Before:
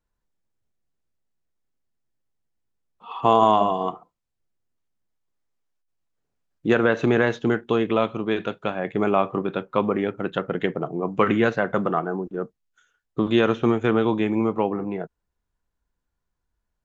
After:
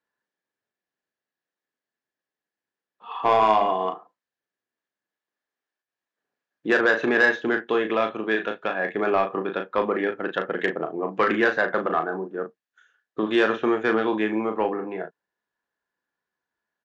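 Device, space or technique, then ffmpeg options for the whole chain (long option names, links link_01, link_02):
intercom: -filter_complex "[0:a]highpass=310,lowpass=4900,equalizer=frequency=1700:width_type=o:width=0.22:gain=11.5,asoftclip=type=tanh:threshold=-10dB,asplit=2[link_01][link_02];[link_02]adelay=37,volume=-7dB[link_03];[link_01][link_03]amix=inputs=2:normalize=0"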